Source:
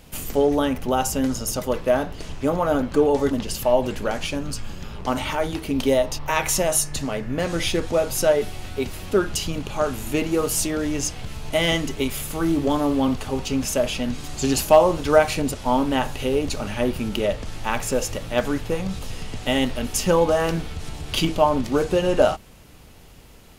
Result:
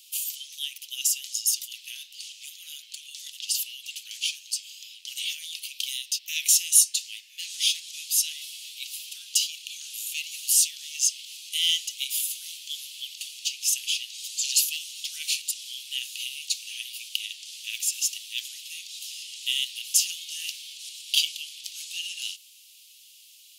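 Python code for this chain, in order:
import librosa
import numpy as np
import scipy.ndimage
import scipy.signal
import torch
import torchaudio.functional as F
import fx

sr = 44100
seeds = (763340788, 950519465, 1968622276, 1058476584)

y = scipy.signal.sosfilt(scipy.signal.butter(8, 2800.0, 'highpass', fs=sr, output='sos'), x)
y = y * 10.0 ** (4.5 / 20.0)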